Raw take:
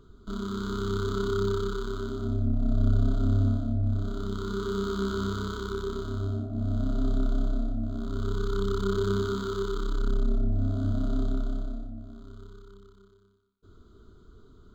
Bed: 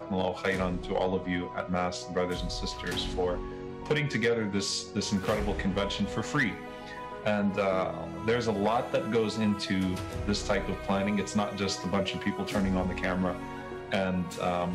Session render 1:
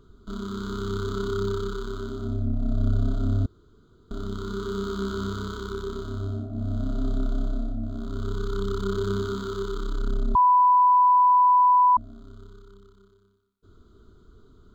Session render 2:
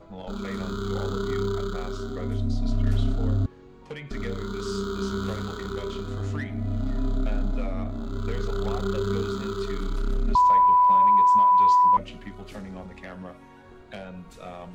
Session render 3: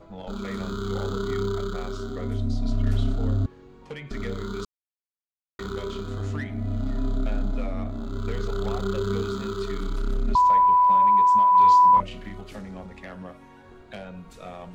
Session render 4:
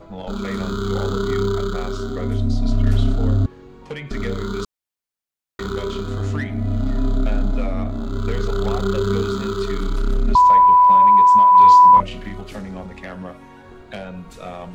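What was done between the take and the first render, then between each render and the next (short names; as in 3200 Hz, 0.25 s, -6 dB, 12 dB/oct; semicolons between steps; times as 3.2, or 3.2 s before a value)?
3.46–4.11 room tone; 10.35–11.97 bleep 993 Hz -14 dBFS
add bed -10.5 dB
4.65–5.59 mute; 11.52–12.41 doubler 32 ms -2 dB
gain +6.5 dB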